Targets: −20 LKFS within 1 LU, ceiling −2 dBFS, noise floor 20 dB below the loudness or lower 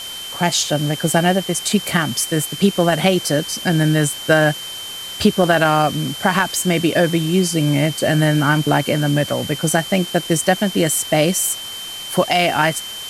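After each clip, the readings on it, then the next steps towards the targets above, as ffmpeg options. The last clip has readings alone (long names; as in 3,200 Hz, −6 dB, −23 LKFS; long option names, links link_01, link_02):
interfering tone 3,100 Hz; level of the tone −29 dBFS; background noise floor −30 dBFS; target noise floor −38 dBFS; integrated loudness −17.5 LKFS; sample peak −1.5 dBFS; target loudness −20.0 LKFS
→ -af "bandreject=frequency=3100:width=30"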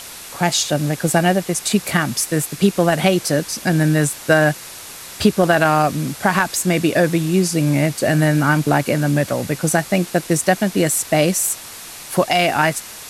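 interfering tone none found; background noise floor −35 dBFS; target noise floor −38 dBFS
→ -af "afftdn=noise_reduction=6:noise_floor=-35"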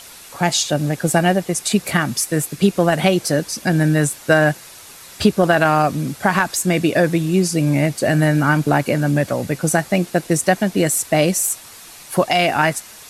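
background noise floor −40 dBFS; integrated loudness −17.5 LKFS; sample peak −1.5 dBFS; target loudness −20.0 LKFS
→ -af "volume=-2.5dB"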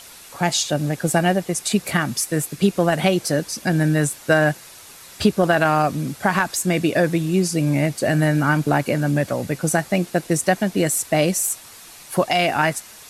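integrated loudness −20.0 LKFS; sample peak −4.0 dBFS; background noise floor −43 dBFS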